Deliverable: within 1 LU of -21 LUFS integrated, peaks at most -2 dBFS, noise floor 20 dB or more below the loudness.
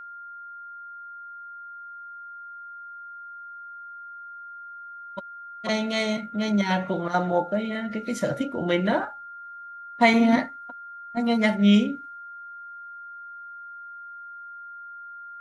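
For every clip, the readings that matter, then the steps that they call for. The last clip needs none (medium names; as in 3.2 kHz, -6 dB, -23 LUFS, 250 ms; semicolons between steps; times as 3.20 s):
steady tone 1.4 kHz; tone level -38 dBFS; loudness -24.0 LUFS; peak level -7.0 dBFS; loudness target -21.0 LUFS
-> band-stop 1.4 kHz, Q 30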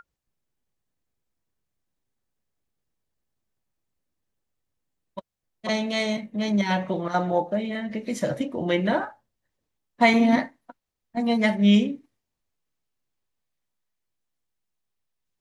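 steady tone not found; loudness -24.0 LUFS; peak level -7.0 dBFS; loudness target -21.0 LUFS
-> trim +3 dB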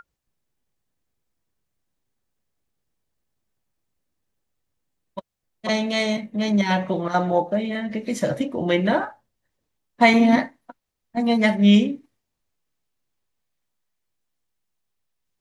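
loudness -21.0 LUFS; peak level -4.0 dBFS; noise floor -79 dBFS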